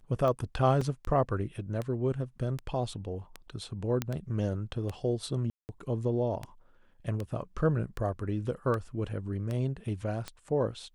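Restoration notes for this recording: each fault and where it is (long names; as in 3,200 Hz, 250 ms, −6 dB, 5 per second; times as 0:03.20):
scratch tick 78 rpm −22 dBFS
0:00.81: drop-out 3.8 ms
0:04.02: click −15 dBFS
0:05.50–0:05.69: drop-out 189 ms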